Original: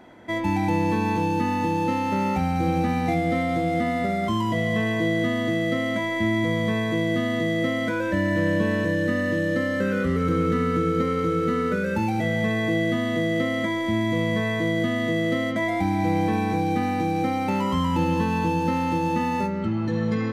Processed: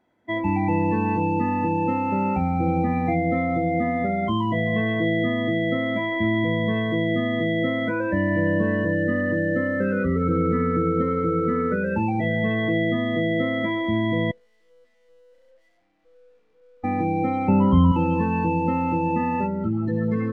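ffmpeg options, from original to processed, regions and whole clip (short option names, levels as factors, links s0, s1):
-filter_complex "[0:a]asettb=1/sr,asplit=3[s0][s1][s2];[s0]atrim=end=14.314[s3];[s1]atrim=start=14.31:end=16.84,asetpts=PTS-STARTPTS,afade=t=in:d=0.004:c=qsin,afade=t=out:st=2.526:d=0.004:c=qsin,asplit=3[s4][s5][s6];[s4]bandpass=f=530:t=q:w=8,volume=1[s7];[s5]bandpass=f=1840:t=q:w=8,volume=0.501[s8];[s6]bandpass=f=2480:t=q:w=8,volume=0.355[s9];[s7][s8][s9]amix=inputs=3:normalize=0,aecho=1:1:95:0.473,atrim=end_sample=111573,aeval=exprs='(tanh(224*val(0)+0.75)-tanh(0.75))/224':c=same[s10];[s2]atrim=start=16.836[s11];[s3][s10]acrossfade=d=0.004:c1=hsin:c2=qsin[s12];[s12][s11]acrossfade=d=0.004:c1=qsin:c2=hsin,asettb=1/sr,asplit=3[s13][s14][s15];[s13]atrim=end=17.484[s16];[s14]atrim=start=17.48:end=17.92,asetpts=PTS-STARTPTS,afade=t=in:d=0.004:c=qsin,afade=t=out:st=0.436:d=0.004:c=qsin,lowpass=f=3100:p=1,lowshelf=f=270:g=12[s17];[s15]atrim=start=17.916[s18];[s16][s17]acrossfade=d=0.004:c1=hsin:c2=qsin[s19];[s19][s18]acrossfade=d=0.004:c1=qsin:c2=hsin,acontrast=27,afftdn=nr=21:nf=-24,volume=0.631"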